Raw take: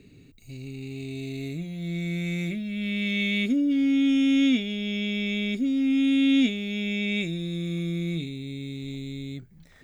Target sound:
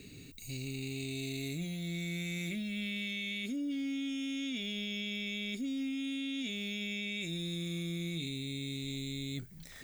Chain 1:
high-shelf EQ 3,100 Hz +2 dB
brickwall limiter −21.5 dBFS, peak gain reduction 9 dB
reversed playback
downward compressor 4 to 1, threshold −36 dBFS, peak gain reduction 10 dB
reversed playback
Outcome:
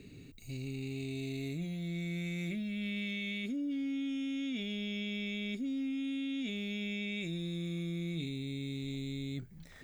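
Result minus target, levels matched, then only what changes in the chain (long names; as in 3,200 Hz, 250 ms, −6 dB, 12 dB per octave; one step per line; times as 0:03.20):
8,000 Hz band −8.5 dB
change: high-shelf EQ 3,100 Hz +14 dB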